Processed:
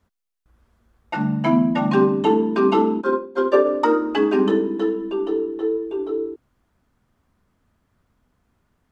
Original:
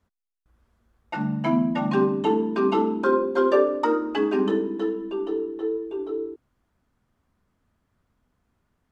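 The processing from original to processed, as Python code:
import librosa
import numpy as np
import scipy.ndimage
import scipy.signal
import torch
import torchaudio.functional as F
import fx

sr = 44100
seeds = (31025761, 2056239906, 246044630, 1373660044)

y = fx.upward_expand(x, sr, threshold_db=-27.0, expansion=2.5, at=(3.0, 3.64), fade=0.02)
y = y * 10.0 ** (4.5 / 20.0)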